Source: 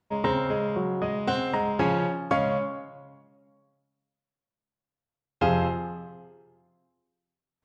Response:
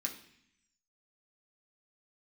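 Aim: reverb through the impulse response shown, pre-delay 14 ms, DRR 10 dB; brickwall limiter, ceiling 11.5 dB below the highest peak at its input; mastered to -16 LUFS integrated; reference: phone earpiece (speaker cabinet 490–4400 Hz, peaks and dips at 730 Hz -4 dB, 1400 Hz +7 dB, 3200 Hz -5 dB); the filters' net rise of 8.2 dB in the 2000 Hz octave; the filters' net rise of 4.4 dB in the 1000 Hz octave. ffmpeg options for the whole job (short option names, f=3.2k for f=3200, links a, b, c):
-filter_complex "[0:a]equalizer=f=1k:t=o:g=4.5,equalizer=f=2k:t=o:g=6,alimiter=limit=-20.5dB:level=0:latency=1,asplit=2[a][b];[1:a]atrim=start_sample=2205,adelay=14[c];[b][c]afir=irnorm=-1:irlink=0,volume=-10.5dB[d];[a][d]amix=inputs=2:normalize=0,highpass=490,equalizer=f=730:t=q:w=4:g=-4,equalizer=f=1.4k:t=q:w=4:g=7,equalizer=f=3.2k:t=q:w=4:g=-5,lowpass=f=4.4k:w=0.5412,lowpass=f=4.4k:w=1.3066,volume=15dB"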